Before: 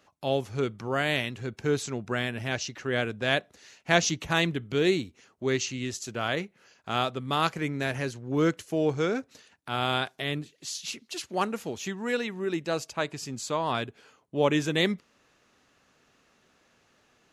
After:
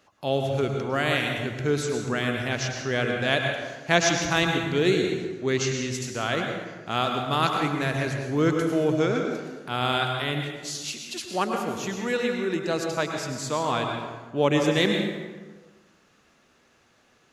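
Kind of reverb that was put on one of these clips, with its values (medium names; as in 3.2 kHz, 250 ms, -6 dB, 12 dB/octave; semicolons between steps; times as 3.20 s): plate-style reverb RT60 1.4 s, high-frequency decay 0.6×, pre-delay 90 ms, DRR 2.5 dB; trim +1.5 dB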